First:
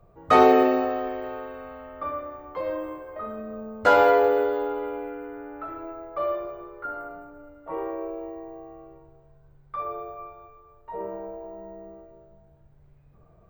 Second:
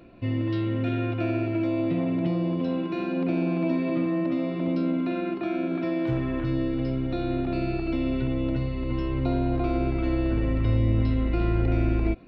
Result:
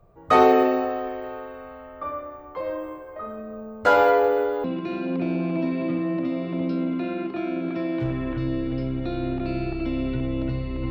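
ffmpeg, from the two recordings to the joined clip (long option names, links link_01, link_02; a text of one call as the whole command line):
ffmpeg -i cue0.wav -i cue1.wav -filter_complex "[0:a]apad=whole_dur=10.9,atrim=end=10.9,atrim=end=4.642[link_01];[1:a]atrim=start=2.708:end=8.97[link_02];[link_01][link_02]acrossfade=duration=0.004:curve1=hsin:curve2=hsin" out.wav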